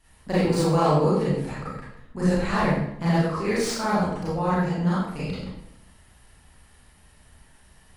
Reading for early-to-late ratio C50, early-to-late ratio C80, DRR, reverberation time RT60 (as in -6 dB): -2.0 dB, 3.0 dB, -10.0 dB, 0.75 s